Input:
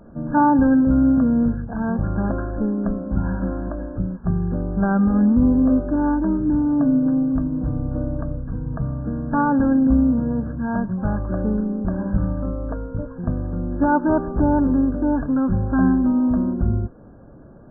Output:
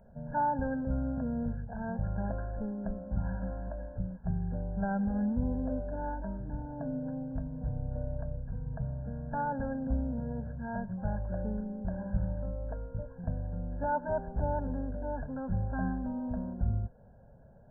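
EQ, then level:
phaser with its sweep stopped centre 1,200 Hz, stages 6
−8.5 dB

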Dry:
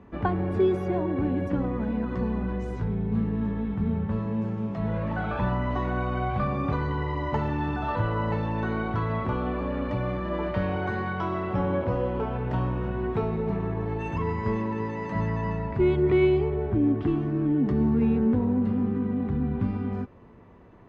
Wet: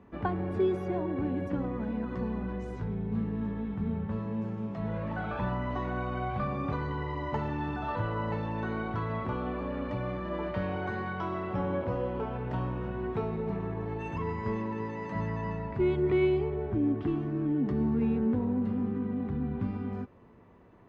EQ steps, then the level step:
low-shelf EQ 75 Hz −5 dB
−4.5 dB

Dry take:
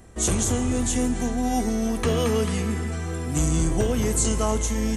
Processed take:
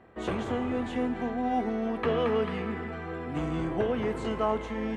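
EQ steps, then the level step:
high-pass filter 580 Hz 6 dB per octave
high-frequency loss of the air 440 metres
high-shelf EQ 4,700 Hz −7.5 dB
+3.0 dB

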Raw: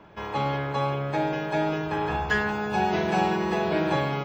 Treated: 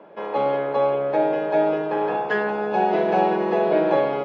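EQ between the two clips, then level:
high-pass filter 190 Hz 24 dB per octave
high-frequency loss of the air 220 metres
parametric band 540 Hz +12 dB 0.95 octaves
0.0 dB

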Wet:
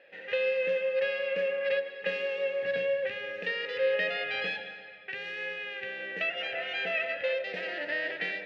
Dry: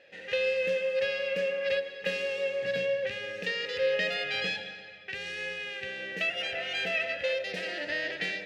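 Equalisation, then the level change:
high-pass filter 370 Hz 6 dB per octave
low-pass filter 2,500 Hz 12 dB per octave
+2.0 dB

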